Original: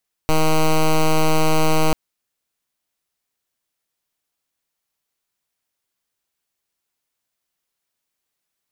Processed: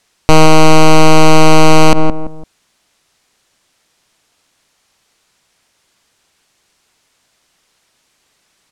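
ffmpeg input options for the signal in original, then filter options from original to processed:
-f lavfi -i "aevalsrc='0.188*(2*lt(mod(157*t,1),0.09)-1)':d=1.64:s=44100"
-filter_complex "[0:a]lowpass=7.9k,asplit=2[a][b];[b]adelay=169,lowpass=f=920:p=1,volume=-15.5dB,asplit=2[c][d];[d]adelay=169,lowpass=f=920:p=1,volume=0.35,asplit=2[e][f];[f]adelay=169,lowpass=f=920:p=1,volume=0.35[g];[a][c][e][g]amix=inputs=4:normalize=0,alimiter=level_in=23dB:limit=-1dB:release=50:level=0:latency=1"

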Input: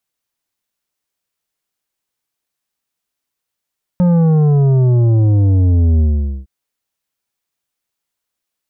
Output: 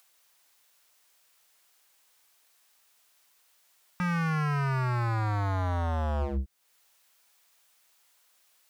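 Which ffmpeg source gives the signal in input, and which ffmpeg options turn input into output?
-f lavfi -i "aevalsrc='0.335*clip((2.46-t)/0.46,0,1)*tanh(2.82*sin(2*PI*180*2.46/log(65/180)*(exp(log(65/180)*t/2.46)-1)))/tanh(2.82)':d=2.46:s=44100"
-filter_complex "[0:a]acrossover=split=520[a][b];[b]acompressor=mode=upward:threshold=-52dB:ratio=2.5[c];[a][c]amix=inputs=2:normalize=0,alimiter=limit=-14.5dB:level=0:latency=1,aeval=exprs='0.0562*(abs(mod(val(0)/0.0562+3,4)-2)-1)':c=same"

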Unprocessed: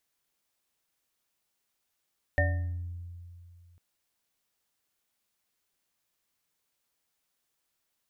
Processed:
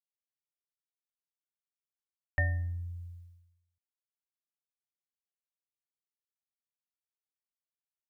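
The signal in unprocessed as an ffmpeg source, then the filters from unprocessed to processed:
-f lavfi -i "aevalsrc='0.0708*pow(10,-3*t/2.51)*sin(2*PI*87*t)+0.0141*pow(10,-3*t/1.08)*sin(2*PI*283*t)+0.0562*pow(10,-3*t/0.47)*sin(2*PI*583*t)+0.0224*pow(10,-3*t/0.53)*sin(2*PI*732*t)+0.0631*pow(10,-3*t/0.45)*sin(2*PI*1820*t)':d=1.4:s=44100"
-af "agate=range=-33dB:threshold=-43dB:ratio=3:detection=peak,equalizer=f=400:w=0.96:g=-14.5"

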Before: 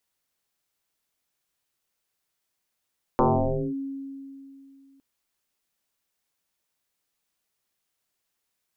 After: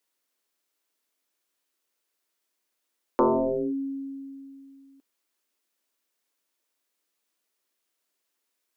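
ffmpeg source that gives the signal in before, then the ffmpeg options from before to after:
-f lavfi -i "aevalsrc='0.168*pow(10,-3*t/2.77)*sin(2*PI*273*t+6.7*clip(1-t/0.55,0,1)*sin(2*PI*0.46*273*t))':d=1.81:s=44100"
-af "lowshelf=f=190:t=q:w=1.5:g=-14,bandreject=f=780:w=12"

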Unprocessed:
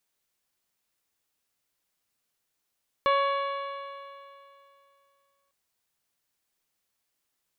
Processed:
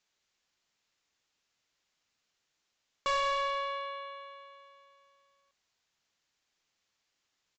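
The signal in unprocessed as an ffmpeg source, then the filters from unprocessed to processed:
-f lavfi -i "aevalsrc='0.0668*pow(10,-3*t/2.64)*sin(2*PI*555.55*t)+0.0891*pow(10,-3*t/2.64)*sin(2*PI*1114.43*t)+0.0211*pow(10,-3*t/2.64)*sin(2*PI*1679.92*t)+0.0211*pow(10,-3*t/2.64)*sin(2*PI*2255.24*t)+0.0133*pow(10,-3*t/2.64)*sin(2*PI*2843.53*t)+0.0133*pow(10,-3*t/2.64)*sin(2*PI*3447.8*t)+0.00668*pow(10,-3*t/2.64)*sin(2*PI*4070.92*t)':d=2.45:s=44100"
-af "lowpass=f=3.2k:p=1,highshelf=f=2k:g=10,aresample=16000,asoftclip=type=tanh:threshold=-27dB,aresample=44100"

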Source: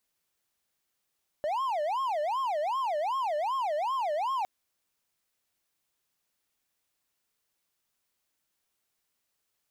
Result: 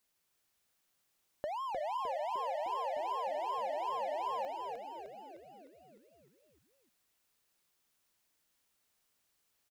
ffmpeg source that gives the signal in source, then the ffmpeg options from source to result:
-f lavfi -i "aevalsrc='0.0562*(1-4*abs(mod((834.5*t-245.5/(2*PI*2.6)*sin(2*PI*2.6*t))+0.25,1)-0.5))':d=3.01:s=44100"
-filter_complex "[0:a]acompressor=threshold=-37dB:ratio=6,asplit=9[a][b][c][d][e][f][g][h][i];[b]adelay=305,afreqshift=-65,volume=-4dB[j];[c]adelay=610,afreqshift=-130,volume=-8.9dB[k];[d]adelay=915,afreqshift=-195,volume=-13.8dB[l];[e]adelay=1220,afreqshift=-260,volume=-18.6dB[m];[f]adelay=1525,afreqshift=-325,volume=-23.5dB[n];[g]adelay=1830,afreqshift=-390,volume=-28.4dB[o];[h]adelay=2135,afreqshift=-455,volume=-33.3dB[p];[i]adelay=2440,afreqshift=-520,volume=-38.2dB[q];[a][j][k][l][m][n][o][p][q]amix=inputs=9:normalize=0"

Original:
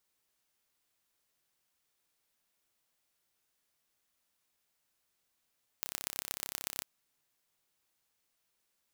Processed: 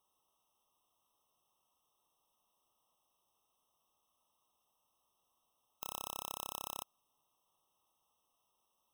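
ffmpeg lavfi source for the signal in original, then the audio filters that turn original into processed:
-f lavfi -i "aevalsrc='0.473*eq(mod(n,1324),0)*(0.5+0.5*eq(mod(n,5296),0))':d=1.02:s=44100"
-af "equalizer=f=1k:w=1.1:g=11,alimiter=limit=-10.5dB:level=0:latency=1:release=17,afftfilt=real='re*eq(mod(floor(b*sr/1024/1300),2),0)':imag='im*eq(mod(floor(b*sr/1024/1300),2),0)':win_size=1024:overlap=0.75"

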